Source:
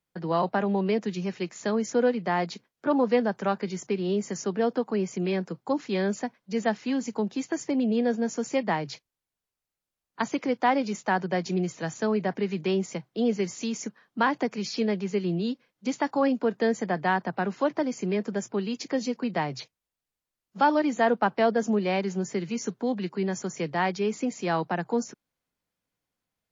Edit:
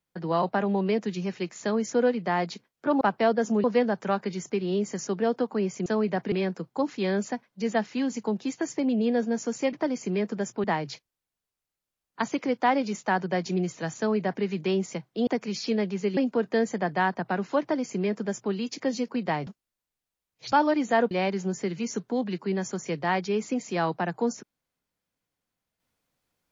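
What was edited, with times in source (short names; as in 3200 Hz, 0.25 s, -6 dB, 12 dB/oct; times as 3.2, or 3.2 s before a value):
11.98–12.44 copy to 5.23
13.27–14.37 cut
15.27–16.25 cut
17.69–18.6 copy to 8.64
19.55–20.6 reverse
21.19–21.82 move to 3.01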